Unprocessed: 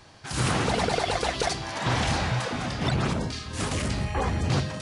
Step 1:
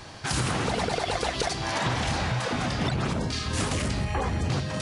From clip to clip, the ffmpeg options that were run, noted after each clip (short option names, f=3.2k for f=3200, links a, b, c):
-af "acompressor=threshold=-33dB:ratio=6,volume=8.5dB"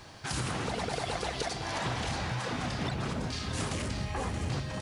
-af "acrusher=bits=10:mix=0:aa=0.000001,aecho=1:1:627:0.355,volume=-6.5dB"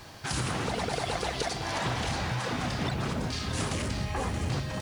-af "acrusher=bits=9:mix=0:aa=0.000001,volume=2.5dB" -ar 48000 -c:a libvorbis -b:a 192k